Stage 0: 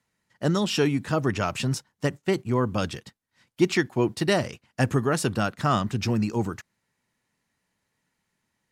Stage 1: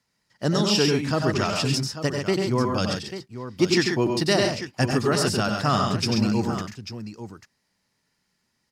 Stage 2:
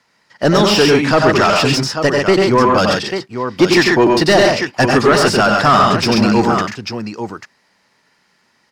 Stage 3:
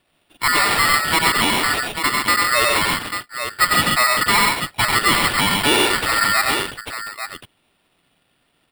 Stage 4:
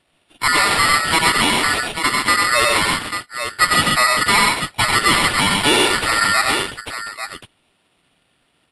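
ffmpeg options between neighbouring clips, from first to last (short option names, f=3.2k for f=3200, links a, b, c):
-filter_complex "[0:a]equalizer=f=5k:t=o:w=0.42:g=11,asplit=2[a][b];[b]aecho=0:1:91|96|134|842:0.398|0.398|0.501|0.266[c];[a][c]amix=inputs=2:normalize=0"
-filter_complex "[0:a]asplit=2[a][b];[b]highpass=f=720:p=1,volume=20dB,asoftclip=type=tanh:threshold=-6.5dB[c];[a][c]amix=inputs=2:normalize=0,lowpass=f=1.8k:p=1,volume=-6dB,volume=6.5dB"
-af "aeval=exprs='val(0)*sin(2*PI*1600*n/s)':c=same,acrusher=samples=7:mix=1:aa=0.000001,volume=-2.5dB"
-af "volume=1.5dB" -ar 32000 -c:a libvorbis -b:a 48k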